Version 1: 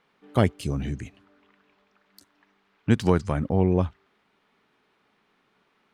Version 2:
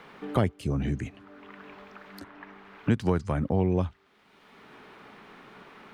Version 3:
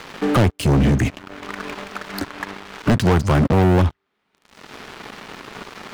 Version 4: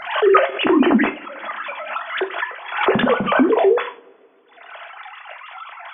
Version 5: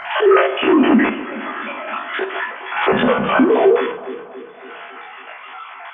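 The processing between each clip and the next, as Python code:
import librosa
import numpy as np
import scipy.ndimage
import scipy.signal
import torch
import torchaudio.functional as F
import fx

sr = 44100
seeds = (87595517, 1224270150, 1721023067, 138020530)

y1 = fx.band_squash(x, sr, depth_pct=70)
y1 = F.gain(torch.from_numpy(y1), -2.5).numpy()
y2 = fx.leveller(y1, sr, passes=5)
y3 = fx.sine_speech(y2, sr)
y3 = fx.rev_double_slope(y3, sr, seeds[0], early_s=0.34, late_s=2.3, knee_db=-28, drr_db=5.0)
y3 = fx.pre_swell(y3, sr, db_per_s=90.0)
y3 = F.gain(torch.from_numpy(y3), -1.0).numpy()
y4 = fx.spec_steps(y3, sr, hold_ms=50)
y4 = fx.echo_alternate(y4, sr, ms=139, hz=1100.0, feedback_pct=74, wet_db=-12.5)
y4 = F.gain(torch.from_numpy(y4), 3.5).numpy()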